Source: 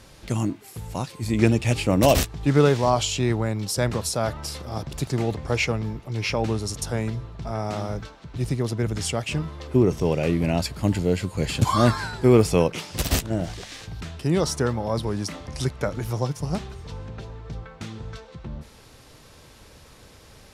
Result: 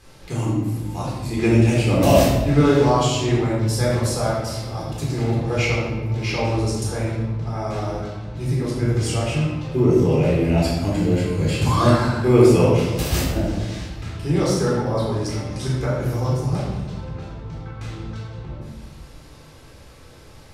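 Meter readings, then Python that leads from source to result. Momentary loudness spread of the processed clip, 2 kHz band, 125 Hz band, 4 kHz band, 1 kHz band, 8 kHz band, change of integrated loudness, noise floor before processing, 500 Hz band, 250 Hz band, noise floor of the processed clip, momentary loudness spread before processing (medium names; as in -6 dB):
16 LU, +2.0 dB, +5.0 dB, +1.0 dB, +3.0 dB, 0.0 dB, +3.5 dB, -50 dBFS, +4.0 dB, +4.0 dB, -44 dBFS, 18 LU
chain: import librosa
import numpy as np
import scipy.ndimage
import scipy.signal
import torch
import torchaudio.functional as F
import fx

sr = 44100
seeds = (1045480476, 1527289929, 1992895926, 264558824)

y = fx.room_shoebox(x, sr, seeds[0], volume_m3=740.0, walls='mixed', distance_m=3.9)
y = y * librosa.db_to_amplitude(-6.5)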